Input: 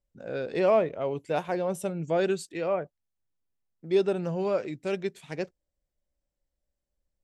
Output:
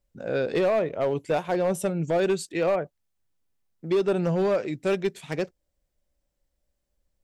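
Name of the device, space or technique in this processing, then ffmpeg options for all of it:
limiter into clipper: -af "alimiter=limit=-20.5dB:level=0:latency=1:release=253,asoftclip=type=hard:threshold=-24.5dB,volume=6.5dB"

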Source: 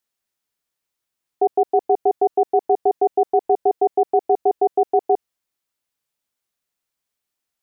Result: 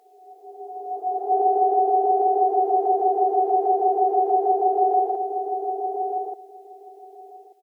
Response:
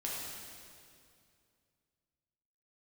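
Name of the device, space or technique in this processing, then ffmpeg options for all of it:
ghost voice: -filter_complex "[0:a]tiltshelf=frequency=780:gain=-7,areverse[link_01];[1:a]atrim=start_sample=2205[link_02];[link_01][link_02]afir=irnorm=-1:irlink=0,areverse,highpass=320,asplit=2[link_03][link_04];[link_04]adelay=1186,lowpass=frequency=940:poles=1,volume=-5.5dB,asplit=2[link_05][link_06];[link_06]adelay=1186,lowpass=frequency=940:poles=1,volume=0.17,asplit=2[link_07][link_08];[link_08]adelay=1186,lowpass=frequency=940:poles=1,volume=0.17[link_09];[link_03][link_05][link_07][link_09]amix=inputs=4:normalize=0,volume=-1.5dB"

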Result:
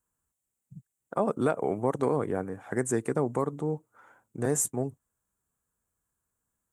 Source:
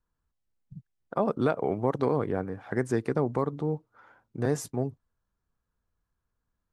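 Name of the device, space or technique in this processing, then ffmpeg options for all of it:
budget condenser microphone: -af "highpass=frequency=120:poles=1,highshelf=frequency=6100:width_type=q:width=3:gain=9"

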